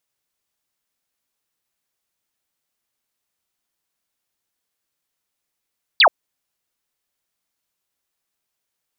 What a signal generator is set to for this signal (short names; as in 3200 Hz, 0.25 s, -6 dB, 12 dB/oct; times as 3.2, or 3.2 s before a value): laser zap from 4900 Hz, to 540 Hz, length 0.08 s sine, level -8 dB